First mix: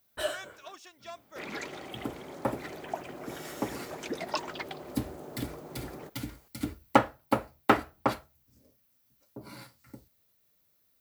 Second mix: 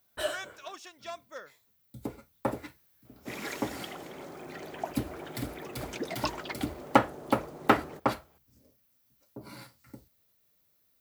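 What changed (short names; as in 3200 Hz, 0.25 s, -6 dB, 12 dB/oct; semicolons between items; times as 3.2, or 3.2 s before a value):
speech +3.5 dB; second sound: entry +1.90 s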